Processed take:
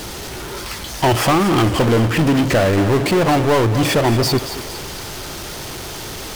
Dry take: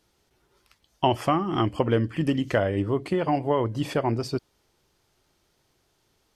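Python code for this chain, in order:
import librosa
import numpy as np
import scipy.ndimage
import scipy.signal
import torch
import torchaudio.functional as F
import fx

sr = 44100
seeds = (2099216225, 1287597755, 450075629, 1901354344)

y = fx.power_curve(x, sr, exponent=0.35)
y = fx.echo_thinned(y, sr, ms=229, feedback_pct=52, hz=420.0, wet_db=-10.5)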